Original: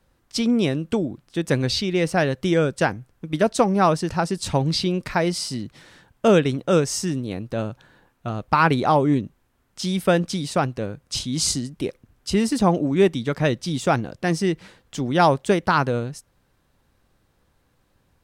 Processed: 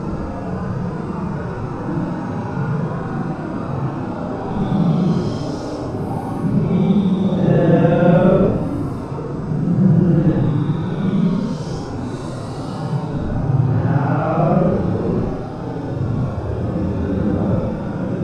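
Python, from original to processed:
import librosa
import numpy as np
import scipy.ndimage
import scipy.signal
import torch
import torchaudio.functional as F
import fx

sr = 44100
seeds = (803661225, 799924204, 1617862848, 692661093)

p1 = fx.local_reverse(x, sr, ms=132.0)
p2 = p1 + fx.echo_diffused(p1, sr, ms=977, feedback_pct=79, wet_db=-9, dry=0)
p3 = fx.paulstretch(p2, sr, seeds[0], factor=11.0, window_s=0.05, from_s=9.35)
p4 = fx.tilt_eq(p3, sr, slope=-4.0)
y = p4 * librosa.db_to_amplitude(-3.5)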